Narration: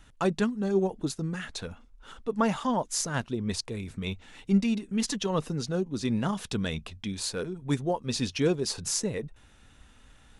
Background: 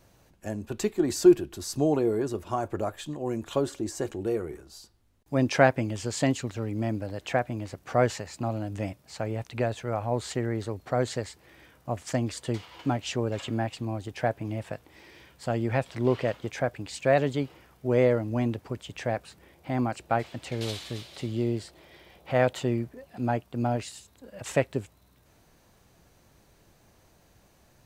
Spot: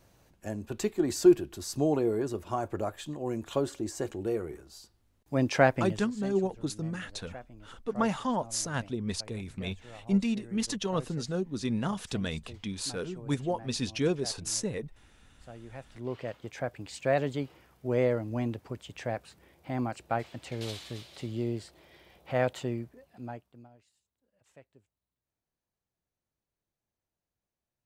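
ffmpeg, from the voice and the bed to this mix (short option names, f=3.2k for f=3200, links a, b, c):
-filter_complex "[0:a]adelay=5600,volume=-2.5dB[a];[1:a]volume=12dB,afade=t=out:st=5.86:d=0.21:silence=0.149624,afade=t=in:st=15.74:d=1.15:silence=0.188365,afade=t=out:st=22.49:d=1.2:silence=0.0473151[b];[a][b]amix=inputs=2:normalize=0"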